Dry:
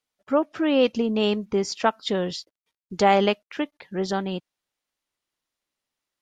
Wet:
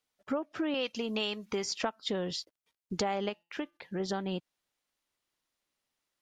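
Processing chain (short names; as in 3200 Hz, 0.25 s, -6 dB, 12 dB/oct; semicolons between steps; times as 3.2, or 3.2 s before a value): 0.74–1.65 tilt shelf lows -7.5 dB, about 780 Hz; compressor 6:1, threshold -30 dBFS, peak gain reduction 15.5 dB; 3.29–4 resonator 170 Hz, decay 0.36 s, harmonics all, mix 30%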